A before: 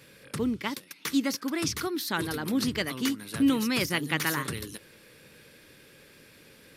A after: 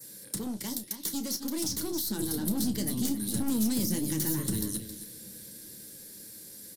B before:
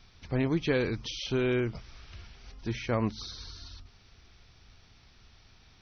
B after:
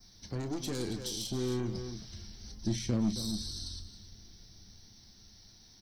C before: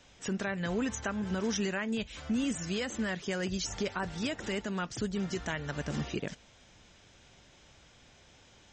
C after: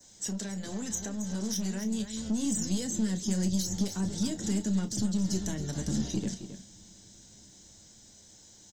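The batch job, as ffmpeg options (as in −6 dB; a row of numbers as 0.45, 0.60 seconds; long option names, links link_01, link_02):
-filter_complex "[0:a]equalizer=frequency=200:width_type=o:width=0.33:gain=9,equalizer=frequency=315:width_type=o:width=0.33:gain=6,equalizer=frequency=1250:width_type=o:width=0.33:gain=-8,equalizer=frequency=2500:width_type=o:width=0.33:gain=-9,equalizer=frequency=4000:width_type=o:width=0.33:gain=10,aeval=exprs='(tanh(17.8*val(0)+0.3)-tanh(0.3))/17.8':channel_layout=same,asplit=2[link_01][link_02];[link_02]adelay=268.2,volume=-11dB,highshelf=frequency=4000:gain=-6.04[link_03];[link_01][link_03]amix=inputs=2:normalize=0,flanger=delay=8.4:depth=1.6:regen=-51:speed=1.4:shape=triangular,acrossover=split=780|4700[link_04][link_05][link_06];[link_04]acompressor=threshold=-33dB:ratio=4[link_07];[link_05]acompressor=threshold=-48dB:ratio=4[link_08];[link_06]acompressor=threshold=-53dB:ratio=4[link_09];[link_07][link_08][link_09]amix=inputs=3:normalize=0,asplit=2[link_10][link_11];[link_11]adelay=32,volume=-12dB[link_12];[link_10][link_12]amix=inputs=2:normalize=0,acrossover=split=300|2700[link_13][link_14][link_15];[link_13]dynaudnorm=framelen=370:gausssize=11:maxgain=9dB[link_16];[link_15]aexciter=amount=7.2:drive=7.1:freq=5400[link_17];[link_16][link_14][link_17]amix=inputs=3:normalize=0,adynamicequalizer=threshold=0.00158:dfrequency=3300:dqfactor=2.4:tfrequency=3300:tqfactor=2.4:attack=5:release=100:ratio=0.375:range=2.5:mode=boostabove:tftype=bell"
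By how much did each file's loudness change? −2.0, −4.5, +2.5 LU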